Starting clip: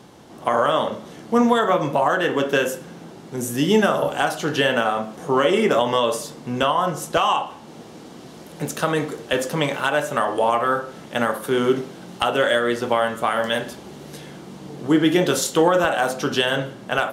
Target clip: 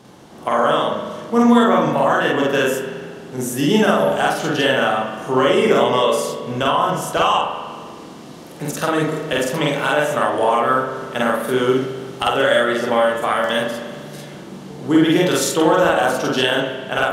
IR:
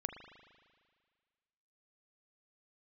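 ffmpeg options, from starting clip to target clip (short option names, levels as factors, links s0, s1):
-filter_complex "[0:a]asplit=2[s0][s1];[1:a]atrim=start_sample=2205,adelay=47[s2];[s1][s2]afir=irnorm=-1:irlink=0,volume=1.33[s3];[s0][s3]amix=inputs=2:normalize=0,volume=0.891"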